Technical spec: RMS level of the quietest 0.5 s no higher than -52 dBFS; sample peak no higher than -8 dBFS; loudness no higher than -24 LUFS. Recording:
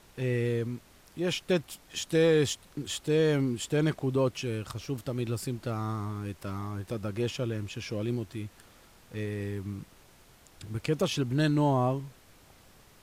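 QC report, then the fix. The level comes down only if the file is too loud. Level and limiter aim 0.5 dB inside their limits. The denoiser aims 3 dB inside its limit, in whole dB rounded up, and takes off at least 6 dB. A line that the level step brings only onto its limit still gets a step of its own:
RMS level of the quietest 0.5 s -57 dBFS: pass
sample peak -14.5 dBFS: pass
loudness -30.5 LUFS: pass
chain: none needed

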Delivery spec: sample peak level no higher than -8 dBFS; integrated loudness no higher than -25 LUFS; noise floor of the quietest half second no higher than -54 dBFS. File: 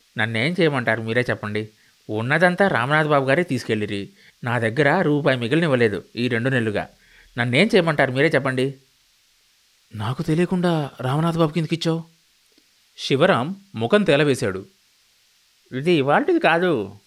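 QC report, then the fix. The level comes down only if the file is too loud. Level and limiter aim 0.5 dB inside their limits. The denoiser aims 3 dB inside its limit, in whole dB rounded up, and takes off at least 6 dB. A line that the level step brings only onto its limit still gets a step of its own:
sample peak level -5.0 dBFS: fail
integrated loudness -20.5 LUFS: fail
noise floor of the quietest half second -60 dBFS: pass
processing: trim -5 dB

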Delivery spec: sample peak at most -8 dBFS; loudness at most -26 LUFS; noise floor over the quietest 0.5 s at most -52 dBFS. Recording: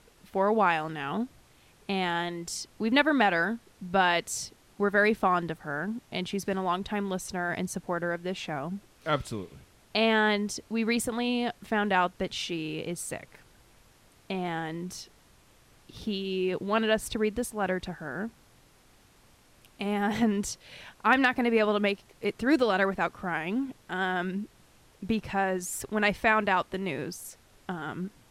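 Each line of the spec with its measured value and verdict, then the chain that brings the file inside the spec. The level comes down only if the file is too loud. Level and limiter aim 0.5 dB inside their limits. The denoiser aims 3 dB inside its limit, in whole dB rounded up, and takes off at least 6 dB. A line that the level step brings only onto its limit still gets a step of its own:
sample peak -9.5 dBFS: pass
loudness -29.0 LUFS: pass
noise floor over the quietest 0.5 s -60 dBFS: pass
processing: none needed

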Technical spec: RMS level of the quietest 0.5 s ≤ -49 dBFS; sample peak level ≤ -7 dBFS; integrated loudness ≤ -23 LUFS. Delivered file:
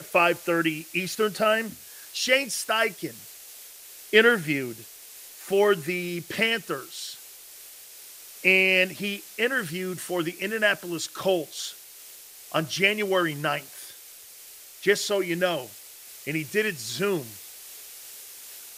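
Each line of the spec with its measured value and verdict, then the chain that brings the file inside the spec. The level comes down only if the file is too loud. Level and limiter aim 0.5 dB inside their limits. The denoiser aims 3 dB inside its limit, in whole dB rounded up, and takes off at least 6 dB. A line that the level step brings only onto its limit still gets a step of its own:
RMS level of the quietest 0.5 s -47 dBFS: fail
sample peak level -4.0 dBFS: fail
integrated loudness -25.0 LUFS: pass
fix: noise reduction 6 dB, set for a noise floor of -47 dBFS; peak limiter -7.5 dBFS

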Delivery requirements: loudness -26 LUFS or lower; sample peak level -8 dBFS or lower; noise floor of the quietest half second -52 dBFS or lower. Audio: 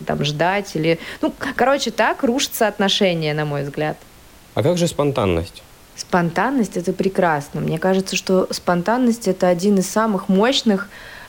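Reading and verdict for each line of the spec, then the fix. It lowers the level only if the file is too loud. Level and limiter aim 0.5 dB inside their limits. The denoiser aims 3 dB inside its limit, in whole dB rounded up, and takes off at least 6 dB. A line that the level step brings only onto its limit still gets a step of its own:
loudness -19.0 LUFS: fail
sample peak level -5.5 dBFS: fail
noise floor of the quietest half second -45 dBFS: fail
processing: trim -7.5 dB

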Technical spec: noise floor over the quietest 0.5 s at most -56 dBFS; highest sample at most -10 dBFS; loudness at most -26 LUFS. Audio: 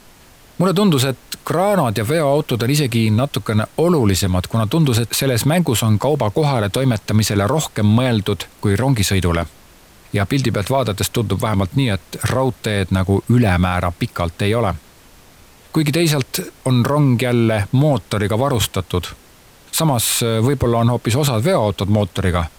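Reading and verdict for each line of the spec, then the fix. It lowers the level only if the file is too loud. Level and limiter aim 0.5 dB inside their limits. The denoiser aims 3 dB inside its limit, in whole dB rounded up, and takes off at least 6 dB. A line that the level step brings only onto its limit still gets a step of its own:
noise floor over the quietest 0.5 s -46 dBFS: fail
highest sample -5.5 dBFS: fail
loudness -17.5 LUFS: fail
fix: noise reduction 6 dB, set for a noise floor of -46 dBFS; trim -9 dB

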